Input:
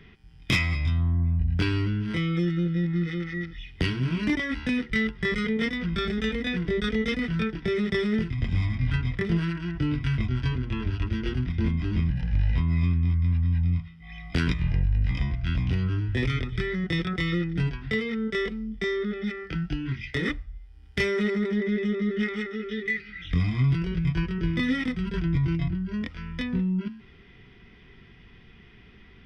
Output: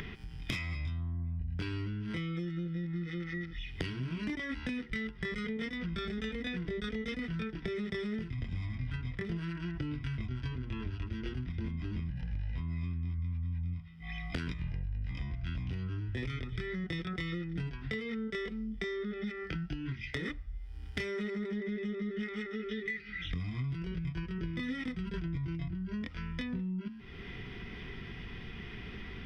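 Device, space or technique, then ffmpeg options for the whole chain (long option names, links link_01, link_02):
upward and downward compression: -filter_complex "[0:a]asettb=1/sr,asplit=3[link_01][link_02][link_03];[link_01]atrim=end=13.184[link_04];[link_02]atrim=start=13.18:end=13.74,asetpts=PTS-STARTPTS,afade=type=in:duration=0.004:curve=qsin,afade=type=out:start_time=0.556:duration=0.004:curve=qsin,aecho=1:1:0.9:0.36,atrim=end_sample=24696[link_05];[link_03]atrim=start=13.736[link_06];[link_04][link_05]acrossfade=duration=0.004:curve1=hsin:curve2=qsin[link_07];[link_07][link_06]acrossfade=duration=0.004:curve1=qsin:curve2=hsin,acompressor=mode=upward:threshold=-34dB:ratio=2.5,acompressor=threshold=-35dB:ratio=5"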